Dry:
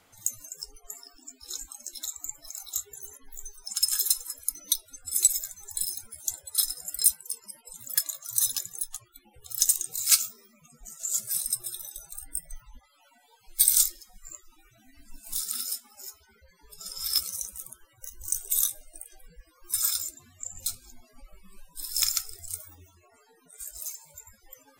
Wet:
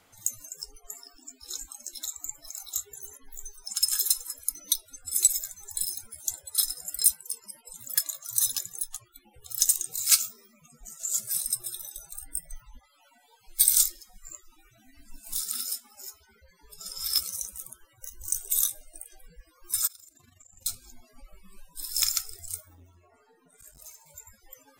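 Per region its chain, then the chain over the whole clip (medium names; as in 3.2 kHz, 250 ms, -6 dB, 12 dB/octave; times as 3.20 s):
19.87–20.66 s: compression 4:1, threshold -48 dBFS + AM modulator 24 Hz, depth 55%
22.60–24.06 s: treble shelf 2.9 kHz -11.5 dB + flutter echo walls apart 11.8 m, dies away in 0.36 s + transformer saturation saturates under 850 Hz
whole clip: none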